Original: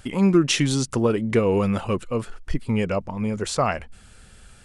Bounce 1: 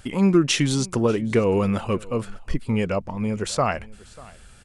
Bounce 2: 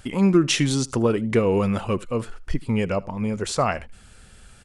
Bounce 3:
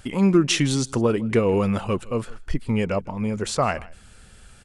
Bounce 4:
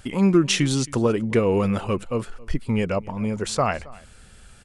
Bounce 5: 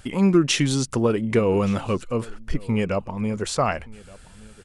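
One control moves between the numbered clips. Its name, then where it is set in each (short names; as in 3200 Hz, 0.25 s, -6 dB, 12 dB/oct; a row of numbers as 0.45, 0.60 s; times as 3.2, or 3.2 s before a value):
echo, time: 591, 78, 159, 270, 1172 ms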